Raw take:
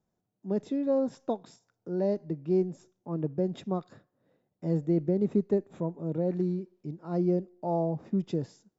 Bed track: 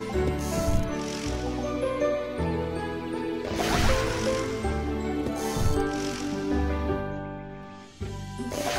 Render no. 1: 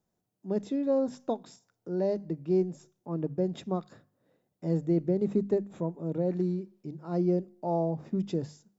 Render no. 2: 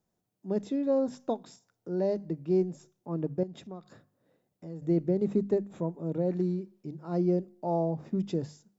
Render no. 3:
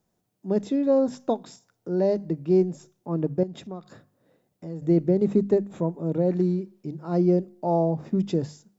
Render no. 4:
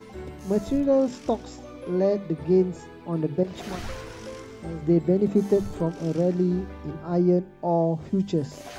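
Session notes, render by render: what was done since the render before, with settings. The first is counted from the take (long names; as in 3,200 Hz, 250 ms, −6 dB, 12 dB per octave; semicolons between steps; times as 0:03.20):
high-shelf EQ 5,000 Hz +5 dB; mains-hum notches 50/100/150/200/250 Hz
0:03.43–0:04.82: downward compressor 2 to 1, threshold −47 dBFS
level +6 dB
mix in bed track −12 dB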